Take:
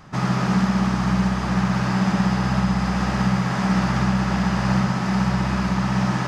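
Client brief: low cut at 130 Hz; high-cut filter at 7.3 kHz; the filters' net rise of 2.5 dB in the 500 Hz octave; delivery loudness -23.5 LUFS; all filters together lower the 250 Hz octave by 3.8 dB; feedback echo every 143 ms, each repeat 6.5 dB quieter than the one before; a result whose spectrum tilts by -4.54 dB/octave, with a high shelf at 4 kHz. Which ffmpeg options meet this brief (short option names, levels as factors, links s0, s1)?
-af "highpass=130,lowpass=7300,equalizer=f=250:t=o:g=-5.5,equalizer=f=500:t=o:g=4.5,highshelf=f=4000:g=8.5,aecho=1:1:143|286|429|572|715|858:0.473|0.222|0.105|0.0491|0.0231|0.0109,volume=0.841"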